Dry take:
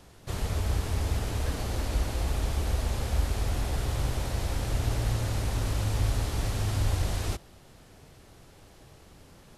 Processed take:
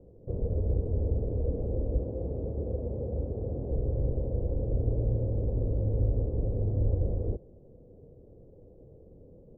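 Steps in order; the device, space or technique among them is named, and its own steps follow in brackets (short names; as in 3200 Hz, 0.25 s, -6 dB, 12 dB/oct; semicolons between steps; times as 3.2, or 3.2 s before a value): under water (LPF 490 Hz 24 dB/oct; bell 500 Hz +11.5 dB 0.49 oct); 1.98–3.71 HPF 86 Hz 12 dB/oct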